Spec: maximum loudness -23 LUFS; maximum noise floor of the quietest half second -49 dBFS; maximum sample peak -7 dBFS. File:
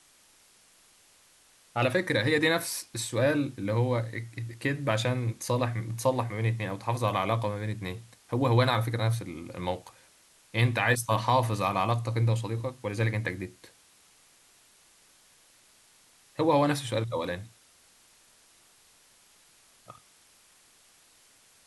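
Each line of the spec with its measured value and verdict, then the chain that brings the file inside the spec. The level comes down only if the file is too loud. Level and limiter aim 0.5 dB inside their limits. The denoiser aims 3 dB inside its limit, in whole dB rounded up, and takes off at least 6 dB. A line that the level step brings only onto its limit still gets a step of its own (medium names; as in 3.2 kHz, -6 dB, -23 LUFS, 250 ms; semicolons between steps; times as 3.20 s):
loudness -28.5 LUFS: pass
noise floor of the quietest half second -61 dBFS: pass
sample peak -10.5 dBFS: pass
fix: none needed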